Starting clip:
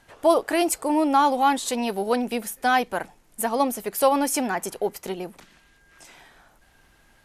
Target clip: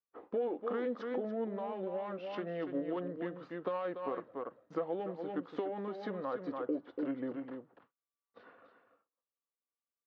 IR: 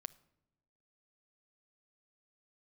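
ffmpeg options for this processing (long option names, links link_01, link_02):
-filter_complex "[0:a]agate=range=-42dB:threshold=-48dB:ratio=16:detection=peak,adynamicsmooth=sensitivity=0.5:basefreq=2100,tiltshelf=frequency=720:gain=-4.5,alimiter=limit=-17.5dB:level=0:latency=1:release=11,asplit=2[link_01][link_02];[link_02]aecho=0:1:207:0.376[link_03];[link_01][link_03]amix=inputs=2:normalize=0,acompressor=threshold=-32dB:ratio=6,highpass=190,equalizer=frequency=210:width_type=q:width=4:gain=-7,equalizer=frequency=390:width_type=q:width=4:gain=6,equalizer=frequency=680:width_type=q:width=4:gain=7,equalizer=frequency=1700:width_type=q:width=4:gain=3,equalizer=frequency=3200:width_type=q:width=4:gain=-6,lowpass=frequency=5300:width=0.5412,lowpass=frequency=5300:width=1.3066,asetrate=31752,aresample=44100,bandreject=frequency=620:width=12,volume=-4.5dB"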